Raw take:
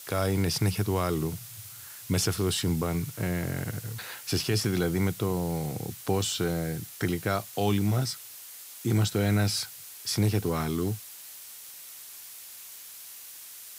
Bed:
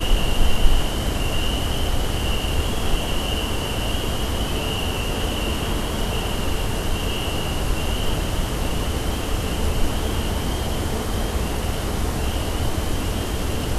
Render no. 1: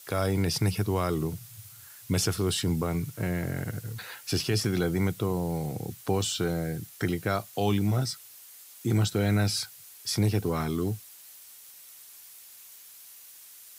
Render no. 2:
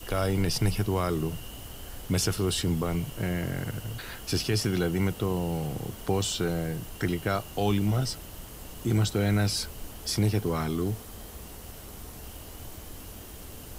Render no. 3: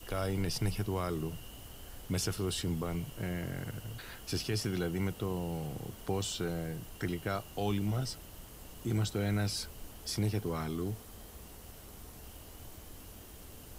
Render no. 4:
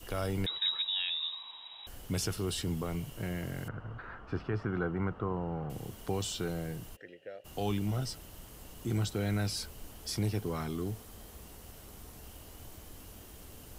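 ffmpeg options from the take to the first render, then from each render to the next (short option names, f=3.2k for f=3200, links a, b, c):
-af "afftdn=nr=6:nf=-45"
-filter_complex "[1:a]volume=-20.5dB[a];[0:a][a]amix=inputs=2:normalize=0"
-af "volume=-7dB"
-filter_complex "[0:a]asettb=1/sr,asplit=3[a][b][c];[a]atrim=end=0.464[d];[b]atrim=start=0.46:end=1.87,asetpts=PTS-STARTPTS,afade=t=in:d=0.004:c=qsin,afade=t=out:st=1.406:d=0.004:c=qsin,lowpass=f=3.3k:t=q:w=0.5098,lowpass=f=3.3k:t=q:w=0.6013,lowpass=f=3.3k:t=q:w=0.9,lowpass=f=3.3k:t=q:w=2.563,afreqshift=-3900[e];[c]atrim=start=1.866[f];[d][e]acrossfade=d=0.004:c1=hsin:c2=qsin[g];[g][f]acrossfade=d=0.004:c1=qsin:c2=hsin,asettb=1/sr,asplit=3[h][i][j];[h]atrim=end=3.684[k];[i]atrim=start=3.68:end=5.7,asetpts=PTS-STARTPTS,afade=t=in:d=0.004:c=qsin,afade=t=out:st=2.016:d=0.004:c=qsin,lowpass=f=1.3k:t=q:w=2.8[l];[j]atrim=start=5.696[m];[k][l]acrossfade=d=0.004:c1=hsin:c2=qsin[n];[n][m]acrossfade=d=0.004:c1=qsin:c2=hsin,asplit=3[o][p][q];[o]afade=t=out:st=6.95:d=0.02[r];[p]asplit=3[s][t][u];[s]bandpass=f=530:t=q:w=8,volume=0dB[v];[t]bandpass=f=1.84k:t=q:w=8,volume=-6dB[w];[u]bandpass=f=2.48k:t=q:w=8,volume=-9dB[x];[v][w][x]amix=inputs=3:normalize=0,afade=t=in:st=6.95:d=0.02,afade=t=out:st=7.44:d=0.02[y];[q]afade=t=in:st=7.44:d=0.02[z];[r][y][z]amix=inputs=3:normalize=0"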